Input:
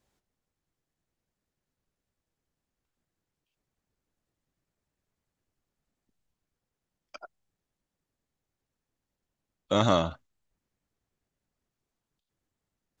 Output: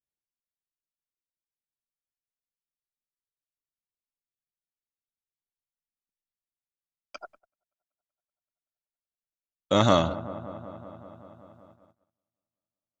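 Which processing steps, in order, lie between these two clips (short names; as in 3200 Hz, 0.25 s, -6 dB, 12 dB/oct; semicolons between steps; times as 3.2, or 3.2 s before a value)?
on a send: dark delay 0.19 s, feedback 75%, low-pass 1300 Hz, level -15 dB; on the sum: gate -57 dBFS, range -29 dB; gain +3 dB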